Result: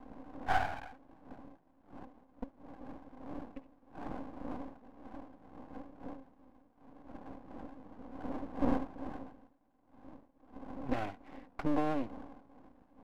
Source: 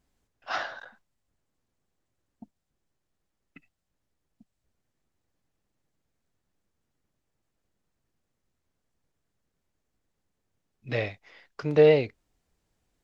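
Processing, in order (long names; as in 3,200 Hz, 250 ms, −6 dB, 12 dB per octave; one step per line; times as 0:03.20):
wind on the microphone 360 Hz −47 dBFS
downward compressor 3 to 1, threshold −30 dBFS, peak gain reduction 12.5 dB
pair of resonant band-passes 460 Hz, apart 1.5 octaves
half-wave rectification
level +16.5 dB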